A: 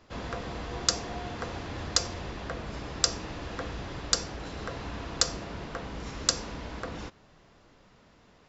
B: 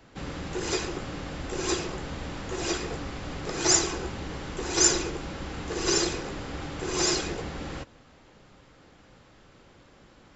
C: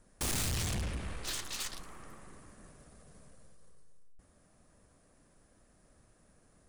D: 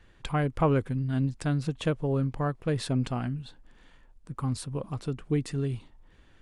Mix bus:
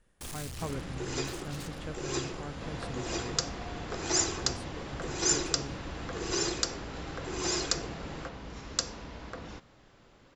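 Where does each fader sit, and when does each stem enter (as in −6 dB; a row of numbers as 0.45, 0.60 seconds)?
−5.0, −6.0, −8.5, −14.0 decibels; 2.50, 0.45, 0.00, 0.00 seconds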